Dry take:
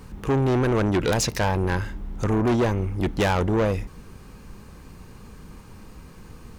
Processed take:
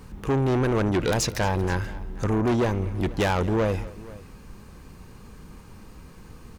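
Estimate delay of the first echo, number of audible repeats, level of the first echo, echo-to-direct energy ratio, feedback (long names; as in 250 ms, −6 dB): 227 ms, 2, −20.0 dB, −17.0 dB, repeats not evenly spaced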